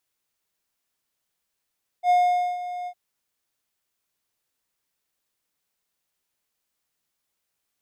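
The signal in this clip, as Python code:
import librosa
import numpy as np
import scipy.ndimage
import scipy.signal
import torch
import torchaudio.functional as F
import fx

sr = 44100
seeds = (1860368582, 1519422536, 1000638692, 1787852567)

y = fx.adsr_tone(sr, wave='triangle', hz=716.0, attack_ms=69.0, decay_ms=477.0, sustain_db=-14.5, held_s=0.84, release_ms=66.0, level_db=-12.5)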